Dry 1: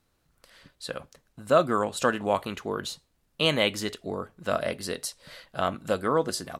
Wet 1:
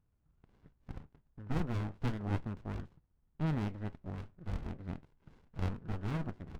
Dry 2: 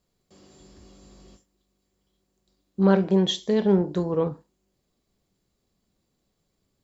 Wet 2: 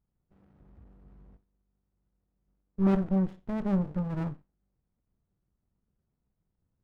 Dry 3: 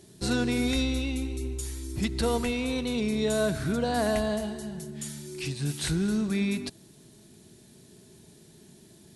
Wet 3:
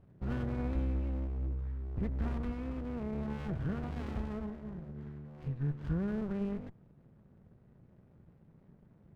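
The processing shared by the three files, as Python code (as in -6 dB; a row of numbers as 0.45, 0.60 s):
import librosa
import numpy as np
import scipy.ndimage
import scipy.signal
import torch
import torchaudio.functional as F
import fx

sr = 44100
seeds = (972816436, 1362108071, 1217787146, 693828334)

y = scipy.signal.sosfilt(scipy.signal.butter(4, 1400.0, 'lowpass', fs=sr, output='sos'), x)
y = fx.peak_eq(y, sr, hz=450.0, db=-12.0, octaves=1.7)
y = fx.running_max(y, sr, window=65)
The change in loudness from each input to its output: -11.5, -7.0, -8.5 LU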